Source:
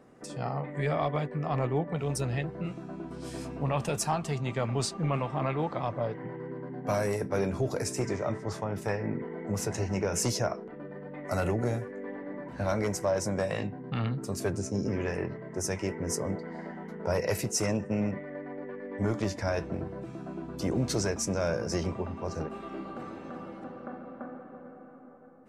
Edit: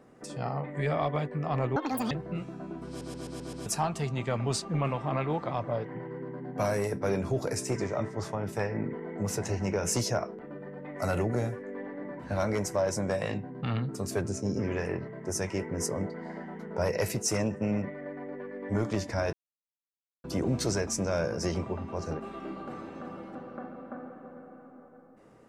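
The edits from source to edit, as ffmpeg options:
-filter_complex "[0:a]asplit=11[a][b][c][d][e][f][g][h][i][j][k];[a]atrim=end=1.764[l];[b]atrim=start=1.76:end=2.4,asetpts=PTS-STARTPTS,asetrate=80703,aresample=44100[m];[c]atrim=start=2.396:end=3.302[n];[d]atrim=start=3.168:end=3.302[o];[e]atrim=start=3.168:end=3.302[p];[f]atrim=start=3.168:end=3.302[q];[g]atrim=start=3.168:end=3.302[r];[h]atrim=start=3.168:end=3.302[s];[i]atrim=start=3.948:end=19.62,asetpts=PTS-STARTPTS,afade=t=out:st=15.668:d=0.004:c=hsin[t];[j]atrim=start=19.62:end=20.53,asetpts=PTS-STARTPTS,volume=0[u];[k]atrim=start=20.53,asetpts=PTS-STARTPTS,afade=t=in:d=0.004:c=hsin[v];[l][m]acrossfade=d=0.004:c1=hsin:c2=hsin[w];[w][n]acrossfade=d=0.004:c1=hsin:c2=hsin[x];[x][o]acrossfade=d=0.004:c1=hsin:c2=hsin[y];[y][p]acrossfade=d=0.004:c1=hsin:c2=hsin[z];[z][q]acrossfade=d=0.004:c1=hsin:c2=hsin[aa];[aa][r]acrossfade=d=0.004:c1=hsin:c2=hsin[ab];[ab][s]acrossfade=d=0.004:c1=hsin:c2=hsin[ac];[t][u][v]concat=n=3:v=0:a=1[ad];[ac][ad]acrossfade=d=0.004:c1=hsin:c2=hsin"

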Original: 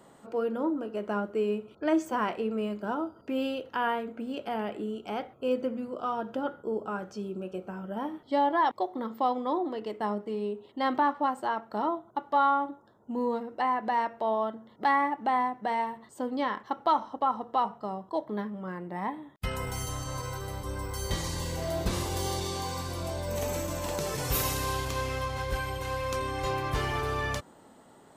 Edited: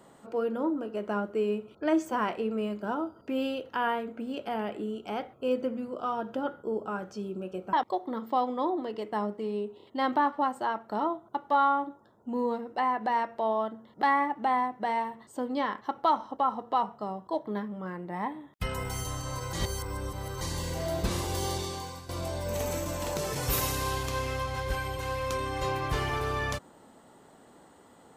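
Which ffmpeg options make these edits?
-filter_complex "[0:a]asplit=7[a][b][c][d][e][f][g];[a]atrim=end=7.732[h];[b]atrim=start=8.608:end=10.682[i];[c]atrim=start=10.648:end=10.682[j];[d]atrim=start=10.648:end=20.352[k];[e]atrim=start=20.348:end=21.232,asetpts=PTS-STARTPTS,areverse[l];[f]atrim=start=21.228:end=22.91,asetpts=PTS-STARTPTS,afade=t=out:st=1.142:d=0.54:silence=0.223872[m];[g]atrim=start=22.91,asetpts=PTS-STARTPTS,afade=t=in:d=0.004:c=hsin:silence=0.223872[n];[h][i]acrossfade=d=0.004:c1=hsin:c2=hsin[o];[o][j]acrossfade=d=0.004:c1=hsin:c2=hsin[p];[p][k]acrossfade=d=0.004:c1=hsin:c2=hsin[q];[q][l]acrossfade=d=0.004:c1=hsin:c2=hsin[r];[m][n]concat=n=2:v=0:a=1[s];[r][s]acrossfade=d=0.004:c1=hsin:c2=hsin"

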